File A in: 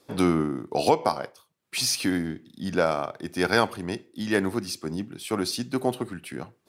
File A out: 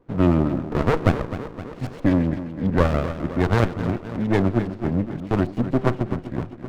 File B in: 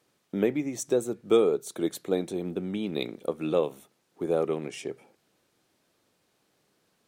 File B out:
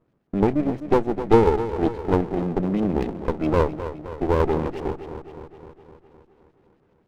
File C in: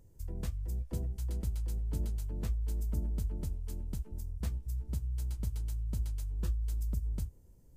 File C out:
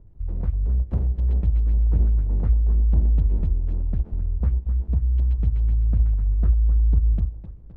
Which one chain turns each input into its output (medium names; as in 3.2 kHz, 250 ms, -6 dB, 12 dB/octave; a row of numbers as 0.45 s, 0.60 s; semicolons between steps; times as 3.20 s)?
tilt EQ -3 dB/octave; level rider gain up to 3.5 dB; LFO low-pass saw up 7.5 Hz 640–3400 Hz; on a send: tape echo 258 ms, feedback 65%, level -10.5 dB, low-pass 3.8 kHz; on the sum: sliding maximum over 33 samples; normalise loudness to -23 LUFS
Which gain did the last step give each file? -1.5 dB, 0.0 dB, -1.0 dB